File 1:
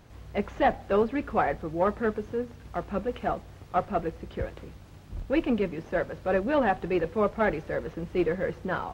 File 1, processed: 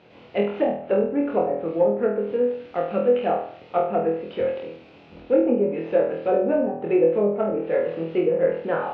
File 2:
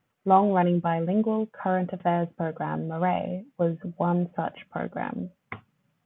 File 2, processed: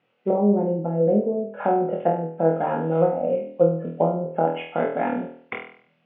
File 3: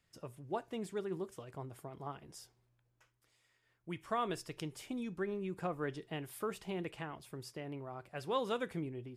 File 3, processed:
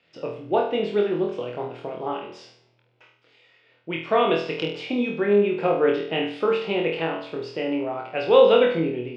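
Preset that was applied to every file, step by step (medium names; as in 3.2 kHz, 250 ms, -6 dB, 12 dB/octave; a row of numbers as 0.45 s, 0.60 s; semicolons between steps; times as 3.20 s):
low-pass that closes with the level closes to 320 Hz, closed at -20 dBFS; cabinet simulation 240–4000 Hz, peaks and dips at 500 Hz +6 dB, 1.1 kHz -6 dB, 1.7 kHz -5 dB, 2.6 kHz +6 dB; flutter echo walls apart 4.2 m, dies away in 0.54 s; normalise loudness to -23 LUFS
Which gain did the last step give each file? +3.5 dB, +5.0 dB, +14.5 dB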